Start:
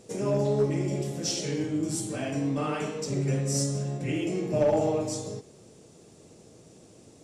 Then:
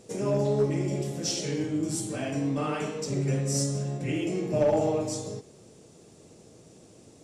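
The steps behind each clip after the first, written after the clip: no audible change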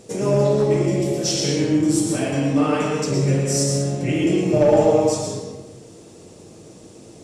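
reverberation RT60 0.85 s, pre-delay 104 ms, DRR 1.5 dB; trim +7 dB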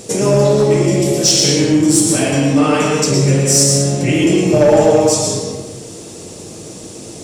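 treble shelf 3.4 kHz +8 dB; in parallel at -1 dB: compression, threshold -27 dBFS, peak gain reduction 15.5 dB; on the sum: saturation -5 dBFS, distortion -24 dB; trim +4.5 dB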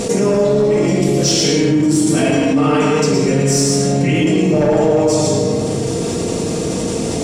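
treble shelf 4.9 kHz -10 dB; simulated room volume 3600 m³, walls furnished, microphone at 1.7 m; level flattener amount 70%; trim -5.5 dB

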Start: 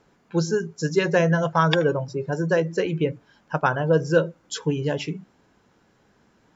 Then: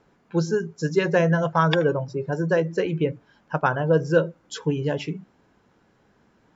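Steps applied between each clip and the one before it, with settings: treble shelf 4.2 kHz -7 dB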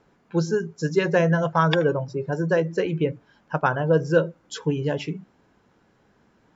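no audible change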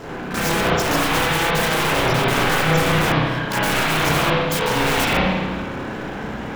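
power-law waveshaper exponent 0.5; integer overflow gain 19.5 dB; spring tank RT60 1.5 s, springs 32/50 ms, chirp 70 ms, DRR -8.5 dB; trim -2.5 dB

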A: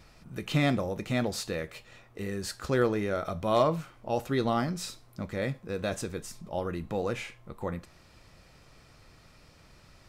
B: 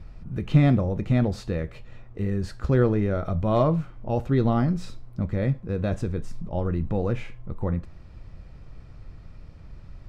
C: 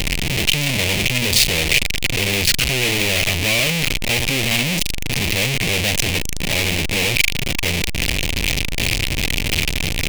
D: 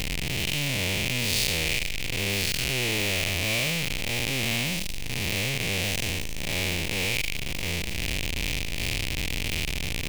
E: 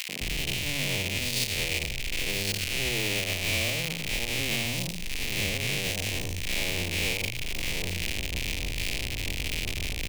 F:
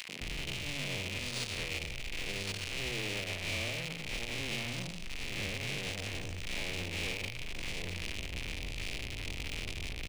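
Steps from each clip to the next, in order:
RIAA curve playback
one-bit comparator; resonant high shelf 1.8 kHz +10 dB, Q 3; trim +3.5 dB
spectral blur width 182 ms; trim -6.5 dB
three bands offset in time highs, mids, lows 90/210 ms, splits 170/1100 Hz; peak limiter -15.5 dBFS, peak gain reduction 8.5 dB
speakerphone echo 160 ms, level -11 dB; decimation joined by straight lines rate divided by 3×; trim -7.5 dB

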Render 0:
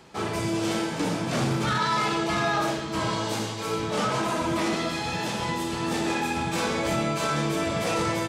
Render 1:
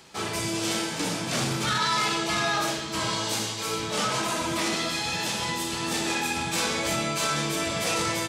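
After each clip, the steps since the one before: treble shelf 2.1 kHz +11.5 dB; trim -4 dB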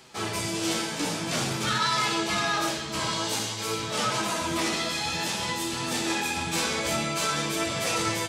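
flange 0.51 Hz, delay 7.5 ms, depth 6.6 ms, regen +53%; trim +3.5 dB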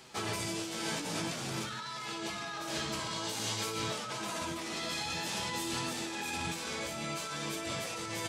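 compressor with a negative ratio -32 dBFS, ratio -1; trim -5.5 dB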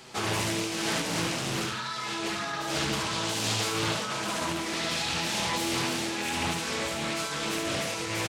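rattle on loud lows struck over -45 dBFS, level -34 dBFS; on a send: early reflections 29 ms -9.5 dB, 72 ms -4.5 dB; on the sum: loudspeaker Doppler distortion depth 0.48 ms; trim +5 dB

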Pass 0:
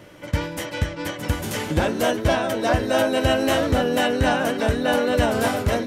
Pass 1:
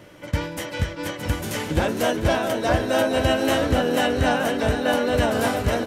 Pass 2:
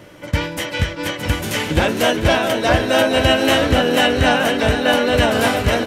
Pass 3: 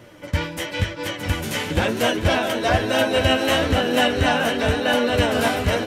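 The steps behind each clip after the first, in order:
feedback delay 460 ms, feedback 56%, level -10.5 dB; trim -1 dB
dynamic bell 2.7 kHz, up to +6 dB, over -40 dBFS, Q 0.97; trim +4.5 dB
flange 1 Hz, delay 7.8 ms, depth 5.6 ms, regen +41%

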